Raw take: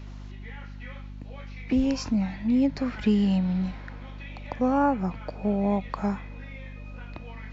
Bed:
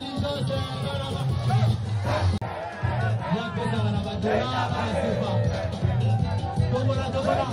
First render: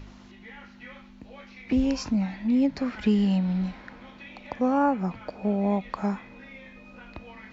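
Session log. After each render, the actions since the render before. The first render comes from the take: de-hum 50 Hz, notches 3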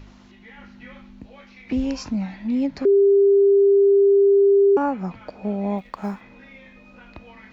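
0.58–1.26 low shelf 410 Hz +6.5 dB; 2.85–4.77 bleep 398 Hz -11.5 dBFS; 5.78–6.21 G.711 law mismatch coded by A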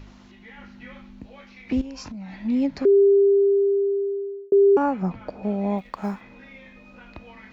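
1.81–2.35 compressor 12:1, threshold -33 dBFS; 3–4.52 fade out; 5.02–5.43 tilt shelf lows +4 dB, about 1200 Hz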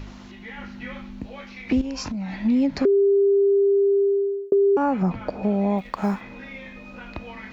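in parallel at +1.5 dB: limiter -21 dBFS, peak gain reduction 9.5 dB; on the sum: compressor, threshold -16 dBFS, peak gain reduction 5.5 dB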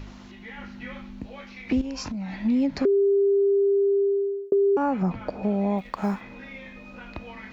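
gain -2.5 dB

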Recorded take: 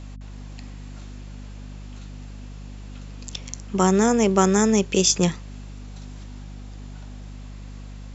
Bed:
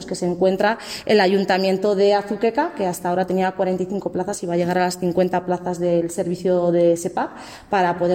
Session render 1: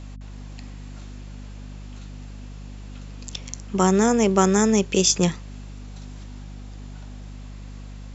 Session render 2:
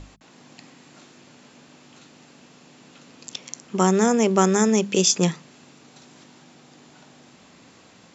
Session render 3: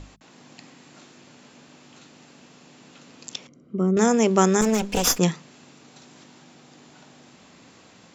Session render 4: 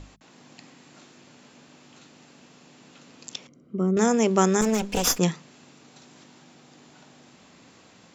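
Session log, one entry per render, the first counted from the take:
nothing audible
notches 50/100/150/200/250 Hz
3.47–3.97 running mean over 51 samples; 4.61–5.19 minimum comb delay 4.1 ms
gain -2 dB

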